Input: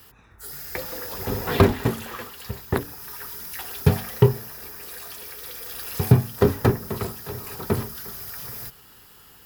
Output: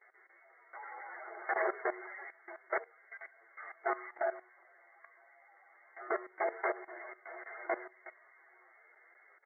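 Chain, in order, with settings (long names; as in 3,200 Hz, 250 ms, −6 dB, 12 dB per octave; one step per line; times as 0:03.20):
phase-vocoder pitch shift without resampling +8.5 semitones
brick-wall band-pass 340–2,200 Hz
tilt shelving filter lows −8 dB
output level in coarse steps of 16 dB
level +1 dB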